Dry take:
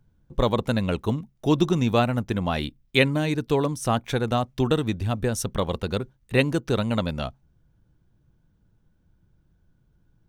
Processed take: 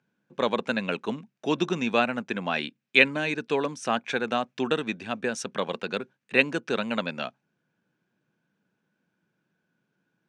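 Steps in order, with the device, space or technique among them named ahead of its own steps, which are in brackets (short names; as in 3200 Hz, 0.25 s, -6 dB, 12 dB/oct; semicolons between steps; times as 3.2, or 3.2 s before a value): television speaker (speaker cabinet 200–7600 Hz, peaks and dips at 310 Hz -4 dB, 1600 Hz +8 dB, 2500 Hz +9 dB); gain -2.5 dB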